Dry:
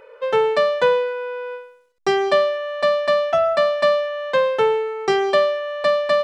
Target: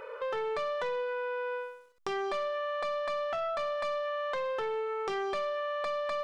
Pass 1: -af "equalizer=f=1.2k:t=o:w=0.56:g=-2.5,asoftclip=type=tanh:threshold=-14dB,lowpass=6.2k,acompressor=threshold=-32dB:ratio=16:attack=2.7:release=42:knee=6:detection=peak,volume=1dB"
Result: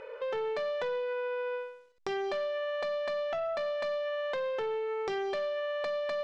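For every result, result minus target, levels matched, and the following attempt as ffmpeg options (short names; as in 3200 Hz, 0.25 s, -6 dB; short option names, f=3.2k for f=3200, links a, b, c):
1000 Hz band -4.5 dB; 8000 Hz band -3.0 dB
-af "equalizer=f=1.2k:t=o:w=0.56:g=7,asoftclip=type=tanh:threshold=-14dB,lowpass=6.2k,acompressor=threshold=-32dB:ratio=16:attack=2.7:release=42:knee=6:detection=peak,volume=1dB"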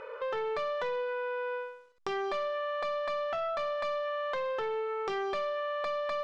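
8000 Hz band -3.5 dB
-af "equalizer=f=1.2k:t=o:w=0.56:g=7,asoftclip=type=tanh:threshold=-14dB,acompressor=threshold=-32dB:ratio=16:attack=2.7:release=42:knee=6:detection=peak,volume=1dB"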